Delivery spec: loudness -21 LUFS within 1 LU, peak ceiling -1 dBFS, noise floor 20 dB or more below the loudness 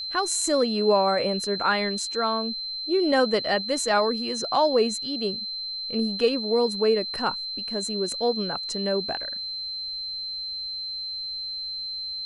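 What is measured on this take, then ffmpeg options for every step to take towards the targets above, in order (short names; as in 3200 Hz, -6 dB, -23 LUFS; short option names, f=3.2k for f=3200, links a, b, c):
steady tone 4100 Hz; tone level -30 dBFS; loudness -25.0 LUFS; peak -9.0 dBFS; loudness target -21.0 LUFS
-> -af "bandreject=f=4.1k:w=30"
-af "volume=4dB"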